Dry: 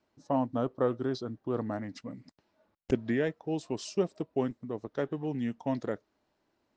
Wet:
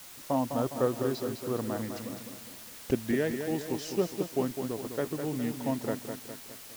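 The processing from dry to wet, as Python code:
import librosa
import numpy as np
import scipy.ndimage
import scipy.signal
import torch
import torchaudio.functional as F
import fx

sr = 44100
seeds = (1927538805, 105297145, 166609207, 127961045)

y = fx.quant_dither(x, sr, seeds[0], bits=8, dither='triangular')
y = fx.echo_crushed(y, sr, ms=205, feedback_pct=55, bits=9, wet_db=-7.0)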